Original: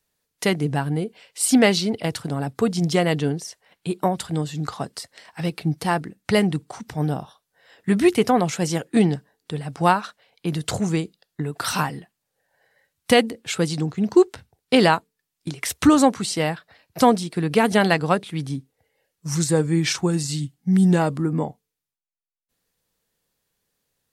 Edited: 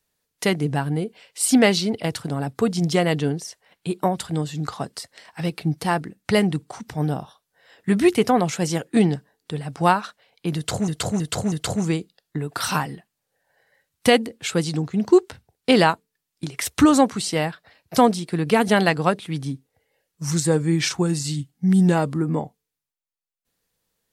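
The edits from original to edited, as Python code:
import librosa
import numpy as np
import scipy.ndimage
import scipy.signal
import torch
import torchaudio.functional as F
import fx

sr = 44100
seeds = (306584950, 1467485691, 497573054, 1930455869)

y = fx.edit(x, sr, fx.repeat(start_s=10.56, length_s=0.32, count=4), tone=tone)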